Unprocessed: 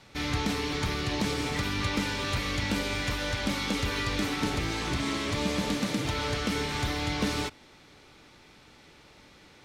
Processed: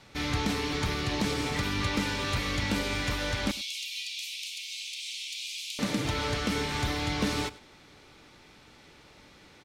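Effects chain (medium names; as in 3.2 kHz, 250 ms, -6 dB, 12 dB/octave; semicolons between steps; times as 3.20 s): 3.51–5.79 s: steep high-pass 2.4 kHz 72 dB/octave; delay 101 ms -19.5 dB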